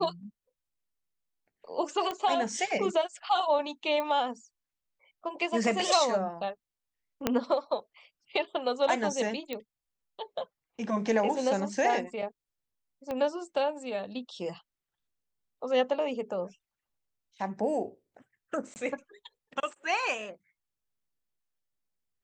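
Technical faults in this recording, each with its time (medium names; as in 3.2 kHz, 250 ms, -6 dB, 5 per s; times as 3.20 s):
2.11 s: pop -20 dBFS
4.00 s: pop -20 dBFS
7.27 s: pop -10 dBFS
9.53 s: pop -20 dBFS
13.11 s: pop -22 dBFS
18.74–18.76 s: dropout 19 ms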